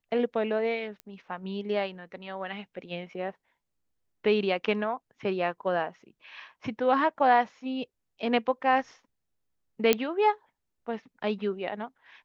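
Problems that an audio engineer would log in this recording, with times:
0:01.00: click −25 dBFS
0:09.93: click −6 dBFS

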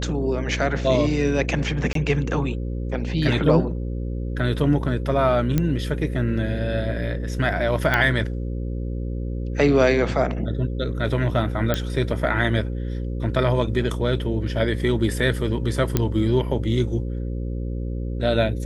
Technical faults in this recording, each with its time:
mains buzz 60 Hz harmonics 9 −27 dBFS
0:01.93–0:01.95: drop-out 23 ms
0:05.58: click −8 dBFS
0:07.94: click −7 dBFS
0:11.74: click −7 dBFS
0:15.97: click −5 dBFS

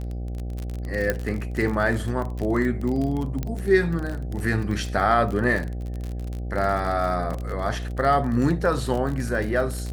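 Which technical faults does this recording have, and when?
mains buzz 60 Hz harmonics 13 −30 dBFS
surface crackle 37 per second −27 dBFS
0:01.10: click −9 dBFS
0:03.43: click −15 dBFS

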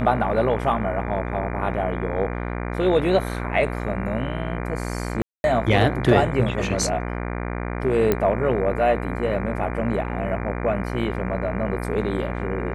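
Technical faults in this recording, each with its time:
mains buzz 60 Hz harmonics 40 −28 dBFS
0:05.22–0:05.44: drop-out 221 ms
0:08.12: click −7 dBFS

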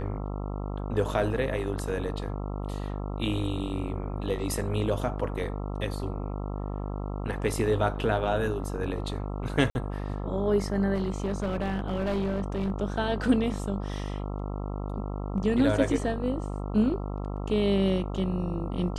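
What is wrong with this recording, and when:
mains buzz 50 Hz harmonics 27 −33 dBFS
0:09.70–0:09.75: drop-out 51 ms
0:10.94–0:12.72: clipping −24 dBFS

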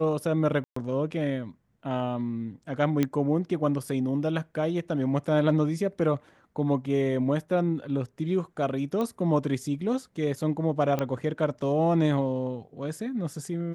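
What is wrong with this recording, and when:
0:00.64–0:00.76: drop-out 124 ms
0:03.03: click −12 dBFS
0:09.01: click −19 dBFS
0:10.99: click −15 dBFS

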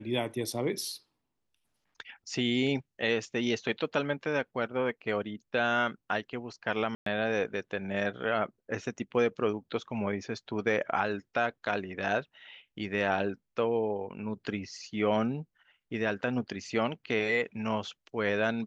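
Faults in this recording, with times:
0:06.95–0:07.06: drop-out 113 ms

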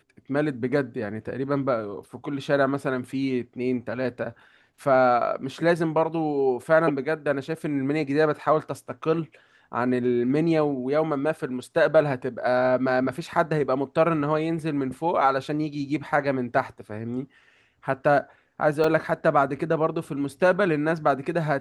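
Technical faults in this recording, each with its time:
0:18.84: drop-out 3.3 ms

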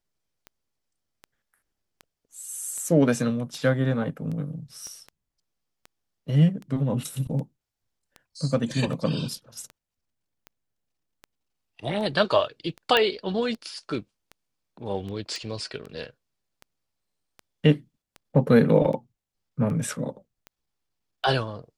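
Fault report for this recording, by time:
scratch tick 78 rpm −26 dBFS
0:04.87: click −29 dBFS
0:12.97: click −8 dBFS
0:15.36: click

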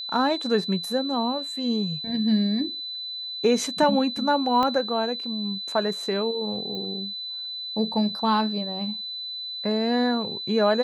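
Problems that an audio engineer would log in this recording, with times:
whistle 4,000 Hz −31 dBFS
0:04.63: click −13 dBFS
0:06.75: click −22 dBFS

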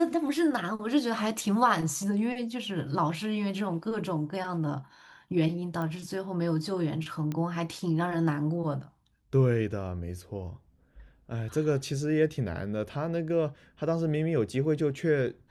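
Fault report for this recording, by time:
0:05.82: click −23 dBFS
0:07.32: click −21 dBFS

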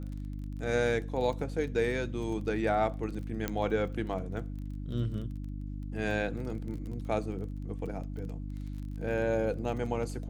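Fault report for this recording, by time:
surface crackle 22 per second −40 dBFS
mains hum 50 Hz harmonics 6 −38 dBFS
0:03.48: click −16 dBFS

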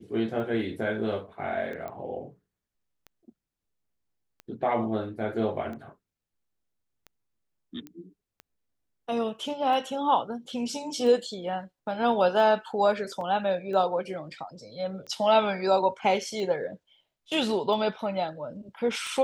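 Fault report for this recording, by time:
scratch tick 45 rpm −28 dBFS
0:01.88: click −25 dBFS
0:07.87: click −27 dBFS
0:13.21: drop-out 2.8 ms

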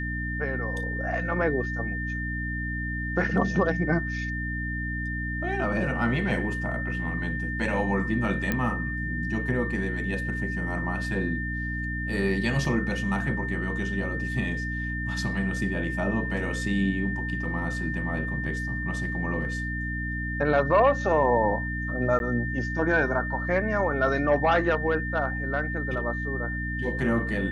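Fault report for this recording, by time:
mains hum 60 Hz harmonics 5 −32 dBFS
whistle 1,800 Hz −32 dBFS
0:08.52: click −12 dBFS
0:12.65: drop-out 2.2 ms
0:22.19–0:22.20: drop-out 11 ms

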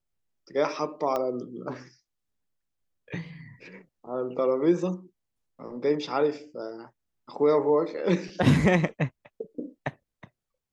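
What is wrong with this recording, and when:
0:01.16: click −16 dBFS

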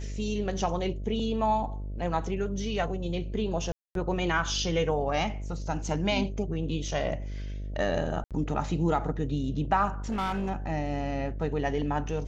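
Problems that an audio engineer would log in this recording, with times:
mains buzz 50 Hz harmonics 13 −35 dBFS
0:03.72–0:03.95: drop-out 232 ms
0:08.24–0:08.31: drop-out 67 ms
0:10.09–0:10.51: clipping −26.5 dBFS

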